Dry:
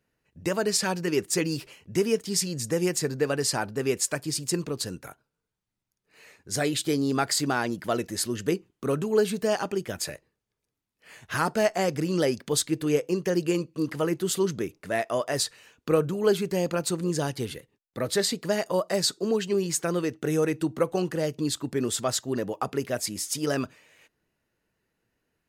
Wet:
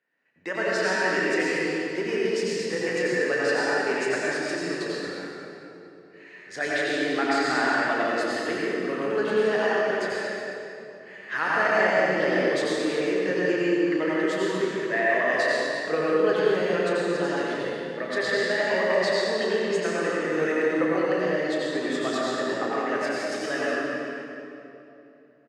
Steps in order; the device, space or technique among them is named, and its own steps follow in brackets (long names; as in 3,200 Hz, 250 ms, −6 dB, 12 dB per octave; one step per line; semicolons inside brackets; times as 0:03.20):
station announcement (band-pass filter 350–3,700 Hz; parametric band 1,800 Hz +12 dB 0.37 octaves; loudspeakers that aren't time-aligned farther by 11 metres −9 dB, 78 metres −11 dB; convolution reverb RT60 3.0 s, pre-delay 80 ms, DRR −6.5 dB)
level −4.5 dB